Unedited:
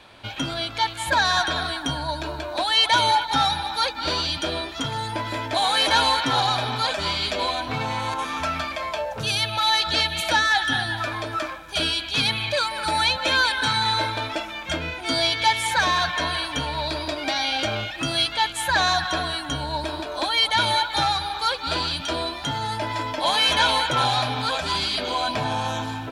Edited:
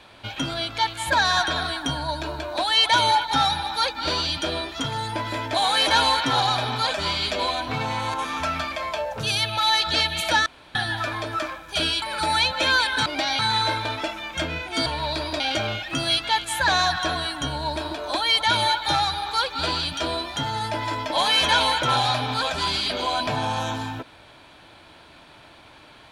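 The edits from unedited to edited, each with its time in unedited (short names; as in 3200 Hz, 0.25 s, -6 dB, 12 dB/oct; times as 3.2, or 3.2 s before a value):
10.46–10.75 room tone
12.02–12.67 cut
15.18–16.61 cut
17.15–17.48 move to 13.71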